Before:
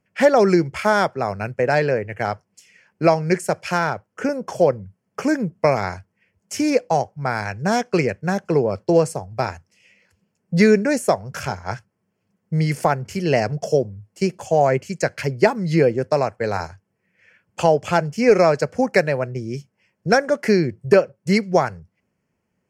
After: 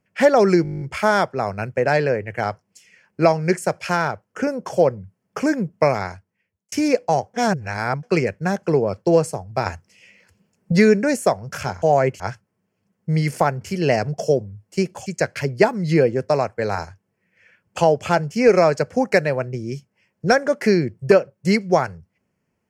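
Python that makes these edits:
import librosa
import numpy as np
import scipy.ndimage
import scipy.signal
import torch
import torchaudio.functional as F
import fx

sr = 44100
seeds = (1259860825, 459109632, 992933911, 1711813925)

y = fx.edit(x, sr, fx.stutter(start_s=0.63, slice_s=0.02, count=10),
    fx.fade_out_span(start_s=5.69, length_s=0.85),
    fx.reverse_span(start_s=7.16, length_s=0.69),
    fx.clip_gain(start_s=9.48, length_s=1.06, db=5.0),
    fx.move(start_s=14.5, length_s=0.38, to_s=11.64), tone=tone)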